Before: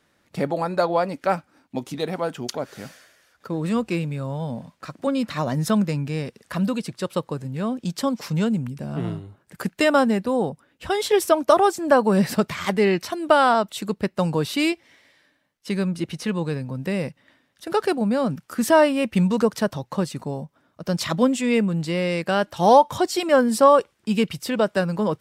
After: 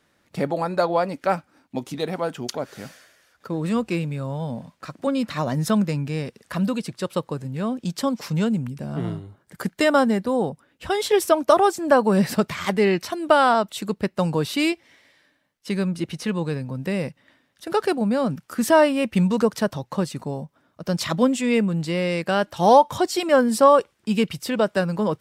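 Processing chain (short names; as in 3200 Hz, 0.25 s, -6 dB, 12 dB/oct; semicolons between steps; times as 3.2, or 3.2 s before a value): 8.87–10.41 notch 2600 Hz, Q 9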